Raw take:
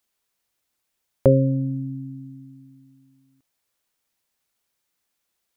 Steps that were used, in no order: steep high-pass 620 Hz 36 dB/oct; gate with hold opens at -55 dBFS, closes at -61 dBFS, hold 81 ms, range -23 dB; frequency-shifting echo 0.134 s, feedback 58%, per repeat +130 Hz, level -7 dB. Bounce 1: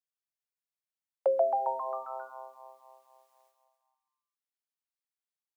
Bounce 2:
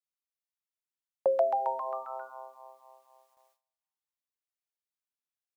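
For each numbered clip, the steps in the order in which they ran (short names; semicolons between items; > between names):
gate with hold > frequency-shifting echo > steep high-pass; frequency-shifting echo > steep high-pass > gate with hold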